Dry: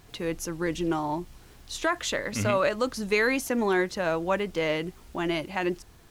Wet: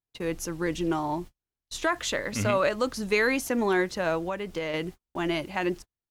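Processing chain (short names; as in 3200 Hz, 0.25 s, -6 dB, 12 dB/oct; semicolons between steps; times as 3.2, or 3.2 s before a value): gate -38 dBFS, range -43 dB; 4.18–4.74 compressor 6:1, threshold -28 dBFS, peak gain reduction 7.5 dB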